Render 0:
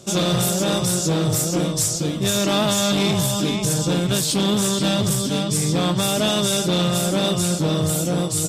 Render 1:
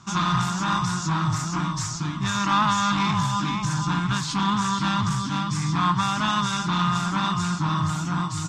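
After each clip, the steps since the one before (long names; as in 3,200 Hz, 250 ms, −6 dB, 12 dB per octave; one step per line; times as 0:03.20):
drawn EQ curve 140 Hz 0 dB, 290 Hz −5 dB, 510 Hz −29 dB, 1,000 Hz +13 dB, 3,200 Hz −5 dB, 6,600 Hz −5 dB, 11,000 Hz −28 dB
level −2 dB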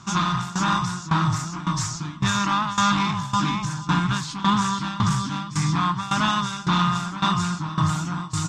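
shaped tremolo saw down 1.8 Hz, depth 85%
level +4.5 dB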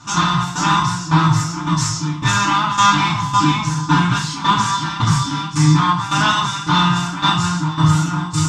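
feedback delay network reverb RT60 0.39 s, low-frequency decay 0.9×, high-frequency decay 1×, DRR −7 dB
level −1 dB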